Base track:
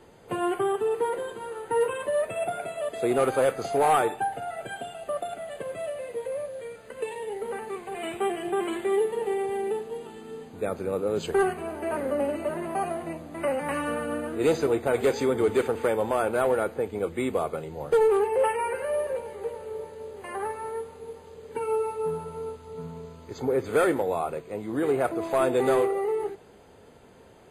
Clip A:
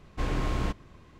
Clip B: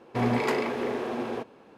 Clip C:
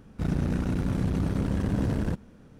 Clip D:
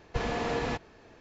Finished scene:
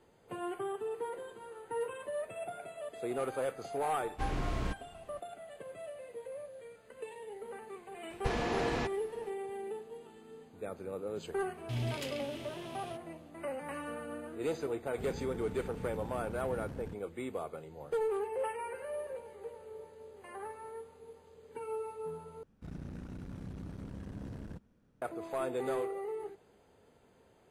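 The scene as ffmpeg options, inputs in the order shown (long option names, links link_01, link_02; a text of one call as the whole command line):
ffmpeg -i bed.wav -i cue0.wav -i cue1.wav -i cue2.wav -i cue3.wav -filter_complex "[3:a]asplit=2[link_01][link_02];[0:a]volume=-12dB[link_03];[2:a]firequalizer=gain_entry='entry(130,0);entry(190,-13);entry(400,-22);entry(1100,-24);entry(2100,-12);entry(3000,2);entry(4400,-3);entry(8600,1)':delay=0.05:min_phase=1[link_04];[link_03]asplit=2[link_05][link_06];[link_05]atrim=end=22.434[link_07];[link_02]atrim=end=2.59,asetpts=PTS-STARTPTS,volume=-17.5dB[link_08];[link_06]atrim=start=25.016[link_09];[1:a]atrim=end=1.19,asetpts=PTS-STARTPTS,volume=-6dB,afade=type=in:duration=0.004:curve=hsin,afade=type=out:start_time=1.186:duration=0.004:curve=hsin,adelay=176841S[link_10];[4:a]atrim=end=1.2,asetpts=PTS-STARTPTS,volume=-2.5dB,afade=type=in:duration=0.004:curve=hsin,afade=type=out:start_time=1.196:duration=0.004:curve=hsin,adelay=357210S[link_11];[link_04]atrim=end=1.77,asetpts=PTS-STARTPTS,volume=-3dB,afade=type=in:duration=0.004:curve=hsin,afade=type=out:start_time=1.766:duration=0.004:curve=hsin,adelay=508914S[link_12];[link_01]atrim=end=2.59,asetpts=PTS-STARTPTS,volume=-17dB,afade=type=in:duration=0.004:curve=hsin,afade=type=out:start_time=2.586:duration=0.004:curve=hsin,adelay=14790[link_13];[link_07][link_08]acrossfade=duration=0.004:curve1=hsin:curve2=hsin[link_14];[link_14][link_09]acrossfade=duration=0.004:curve1=hsin:curve2=hsin[link_15];[link_15][link_10][link_11][link_12][link_13]amix=inputs=5:normalize=0" out.wav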